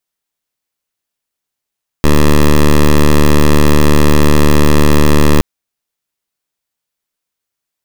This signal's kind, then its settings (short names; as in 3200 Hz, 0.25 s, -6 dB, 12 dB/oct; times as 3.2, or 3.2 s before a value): pulse 74.4 Hz, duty 10% -6 dBFS 3.37 s